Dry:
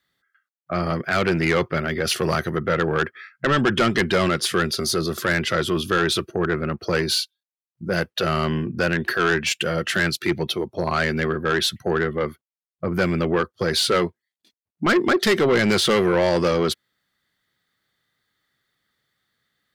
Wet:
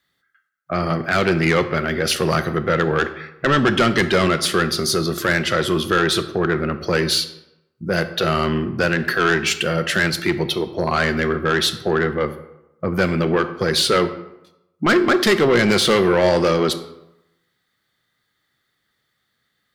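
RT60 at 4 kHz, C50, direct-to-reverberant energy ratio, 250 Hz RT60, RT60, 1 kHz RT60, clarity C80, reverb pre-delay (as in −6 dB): 0.55 s, 12.5 dB, 10.0 dB, 0.85 s, 0.90 s, 0.90 s, 15.0 dB, 11 ms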